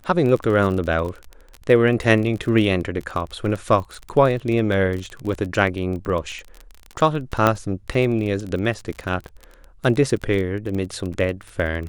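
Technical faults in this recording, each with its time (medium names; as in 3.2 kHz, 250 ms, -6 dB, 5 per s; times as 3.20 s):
crackle 28 per s -26 dBFS
7.47 s: pop -4 dBFS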